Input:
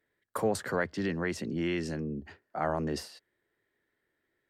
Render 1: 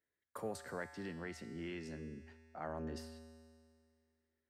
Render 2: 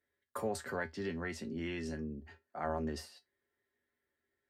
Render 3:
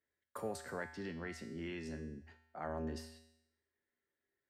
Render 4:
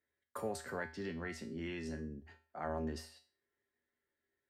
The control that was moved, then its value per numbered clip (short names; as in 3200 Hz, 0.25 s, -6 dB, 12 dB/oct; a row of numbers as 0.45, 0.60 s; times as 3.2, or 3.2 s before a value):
resonator, decay: 2.1, 0.15, 0.82, 0.38 s